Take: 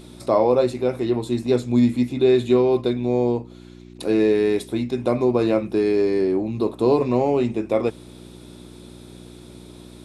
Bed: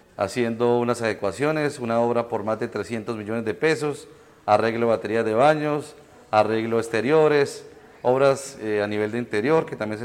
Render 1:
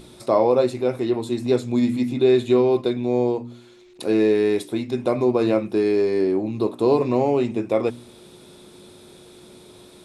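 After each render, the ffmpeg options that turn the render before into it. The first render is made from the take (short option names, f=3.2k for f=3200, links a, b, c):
-af "bandreject=f=60:t=h:w=4,bandreject=f=120:t=h:w=4,bandreject=f=180:t=h:w=4,bandreject=f=240:t=h:w=4,bandreject=f=300:t=h:w=4"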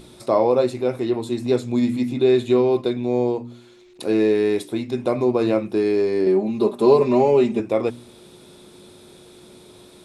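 -filter_complex "[0:a]asettb=1/sr,asplit=3[a][b][c];[a]atrim=end=6.264[d];[b]atrim=start=6.26:end=7.6,asetpts=PTS-STARTPTS,afade=t=in:d=0.004:c=qsin,afade=t=out:st=1.336:d=0.004:c=qsin,aecho=1:1:5:0.98,atrim=end_sample=59094[e];[c]atrim=start=7.596[f];[d][e]acrossfade=d=0.004:c1=hsin:c2=qsin[g];[g][f]acrossfade=d=0.004:c1=qsin:c2=hsin"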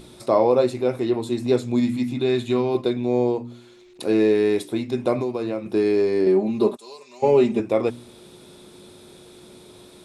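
-filter_complex "[0:a]asettb=1/sr,asplit=3[a][b][c];[a]atrim=end=1.804[d];[b]atrim=start=1.8:end=2.75,asetpts=PTS-STARTPTS,afade=t=in:d=0.004:c=qsin,afade=t=out:st=0.946:d=0.004:c=qsin,equalizer=f=450:w=1.5:g=-7[e];[c]atrim=start=2.746[f];[d][e]acrossfade=d=0.004:c1=hsin:c2=qsin[g];[g][f]acrossfade=d=0.004:c1=qsin:c2=hsin,asettb=1/sr,asplit=3[h][i][j];[h]atrim=end=5.194[k];[i]atrim=start=5.19:end=5.66,asetpts=PTS-STARTPTS,afade=t=in:d=0.004:c=qsin,afade=t=out:st=0.466:d=0.004:c=qsin,acrossover=split=1100|2300[l][m][n];[l]acompressor=threshold=-24dB:ratio=4[o];[m]acompressor=threshold=-45dB:ratio=4[p];[n]acompressor=threshold=-47dB:ratio=4[q];[o][p][q]amix=inputs=3:normalize=0[r];[j]atrim=start=5.656[s];[k][r]acrossfade=d=0.004:c1=hsin:c2=qsin[t];[t][s]acrossfade=d=0.004:c1=qsin:c2=hsin,asplit=3[u][v][w];[u]afade=t=out:st=6.75:d=0.02[x];[v]bandpass=f=6.9k:t=q:w=1.7,afade=t=in:st=6.75:d=0.02,afade=t=out:st=7.22:d=0.02[y];[w]afade=t=in:st=7.22:d=0.02[z];[x][y][z]amix=inputs=3:normalize=0"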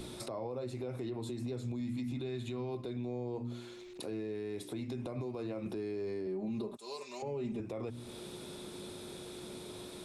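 -filter_complex "[0:a]acrossover=split=140[a][b];[b]acompressor=threshold=-32dB:ratio=3[c];[a][c]amix=inputs=2:normalize=0,alimiter=level_in=7dB:limit=-24dB:level=0:latency=1:release=110,volume=-7dB"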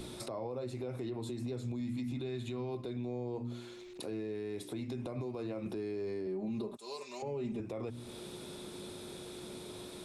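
-af anull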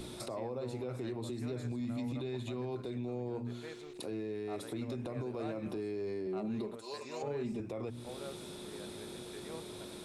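-filter_complex "[1:a]volume=-28.5dB[a];[0:a][a]amix=inputs=2:normalize=0"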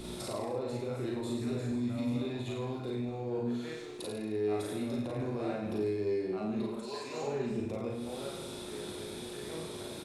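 -filter_complex "[0:a]asplit=2[a][b];[b]adelay=38,volume=-2.5dB[c];[a][c]amix=inputs=2:normalize=0,asplit=2[d][e];[e]aecho=0:1:50|105|165.5|232|305.3:0.631|0.398|0.251|0.158|0.1[f];[d][f]amix=inputs=2:normalize=0"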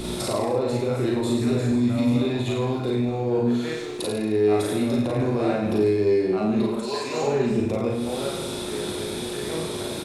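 -af "volume=12dB"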